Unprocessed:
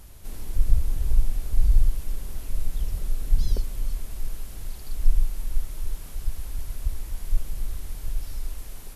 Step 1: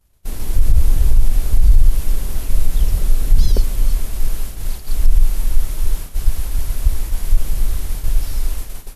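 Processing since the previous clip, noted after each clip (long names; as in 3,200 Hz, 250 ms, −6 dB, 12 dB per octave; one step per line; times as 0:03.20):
downward expander −29 dBFS
boost into a limiter +13 dB
level −1 dB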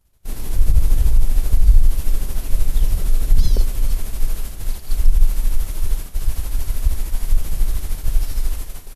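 amplitude tremolo 13 Hz, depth 46%
double-tracking delay 42 ms −12.5 dB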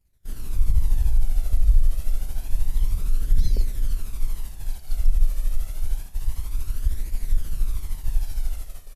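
flanger 0.28 Hz, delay 0.4 ms, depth 1.3 ms, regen +32%
level −5 dB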